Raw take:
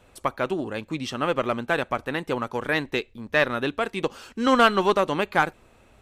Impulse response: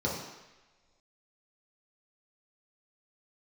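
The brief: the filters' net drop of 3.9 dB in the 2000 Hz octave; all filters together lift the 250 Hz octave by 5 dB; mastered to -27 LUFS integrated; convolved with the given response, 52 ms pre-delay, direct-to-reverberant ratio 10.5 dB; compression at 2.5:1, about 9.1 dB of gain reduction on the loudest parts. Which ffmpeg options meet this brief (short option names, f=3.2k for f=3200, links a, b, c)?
-filter_complex "[0:a]equalizer=f=250:t=o:g=6,equalizer=f=2k:t=o:g=-5.5,acompressor=threshold=-25dB:ratio=2.5,asplit=2[a][b];[1:a]atrim=start_sample=2205,adelay=52[c];[b][c]afir=irnorm=-1:irlink=0,volume=-19dB[d];[a][d]amix=inputs=2:normalize=0,volume=1dB"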